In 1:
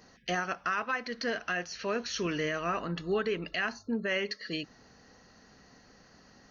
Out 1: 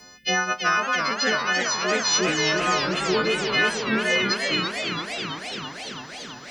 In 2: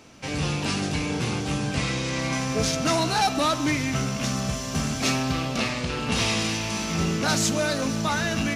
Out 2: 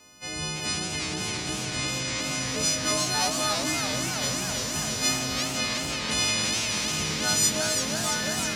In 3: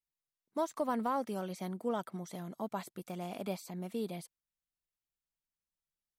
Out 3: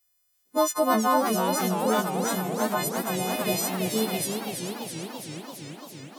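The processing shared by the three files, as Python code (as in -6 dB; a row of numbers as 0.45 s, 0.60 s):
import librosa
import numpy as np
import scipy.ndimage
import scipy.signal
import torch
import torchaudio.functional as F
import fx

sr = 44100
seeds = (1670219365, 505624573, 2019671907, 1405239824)

y = fx.freq_snap(x, sr, grid_st=3)
y = fx.echo_warbled(y, sr, ms=335, feedback_pct=76, rate_hz=2.8, cents=173, wet_db=-6.5)
y = librosa.util.normalize(y) * 10.0 ** (-9 / 20.0)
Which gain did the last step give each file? +6.0 dB, -8.0 dB, +10.0 dB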